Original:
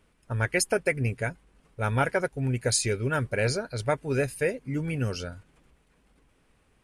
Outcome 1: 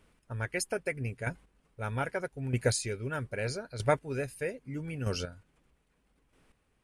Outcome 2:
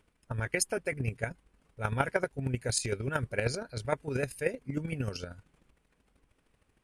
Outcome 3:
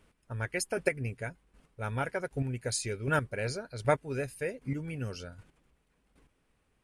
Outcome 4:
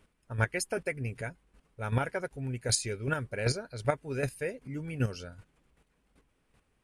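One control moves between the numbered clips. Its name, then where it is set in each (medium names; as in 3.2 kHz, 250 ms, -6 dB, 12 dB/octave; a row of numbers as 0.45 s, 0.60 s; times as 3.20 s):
square tremolo, rate: 0.79 Hz, 13 Hz, 1.3 Hz, 2.6 Hz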